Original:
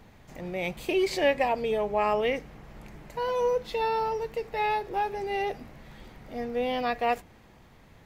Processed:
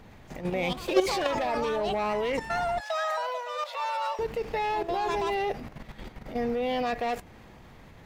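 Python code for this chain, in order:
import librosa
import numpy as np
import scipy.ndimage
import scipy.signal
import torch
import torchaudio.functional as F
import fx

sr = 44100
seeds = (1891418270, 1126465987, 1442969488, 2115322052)

p1 = np.clip(10.0 ** (22.5 / 20.0) * x, -1.0, 1.0) / 10.0 ** (22.5 / 20.0)
p2 = fx.high_shelf(p1, sr, hz=5600.0, db=-4.0)
p3 = 10.0 ** (-30.0 / 20.0) * np.tanh(p2 / 10.0 ** (-30.0 / 20.0))
p4 = p2 + (p3 * 10.0 ** (-7.5 / 20.0))
p5 = fx.echo_pitch(p4, sr, ms=253, semitones=6, count=2, db_per_echo=-6.0)
p6 = fx.level_steps(p5, sr, step_db=11)
p7 = fx.cheby1_highpass(p6, sr, hz=520.0, order=8, at=(2.8, 4.19))
y = p7 * 10.0 ** (5.0 / 20.0)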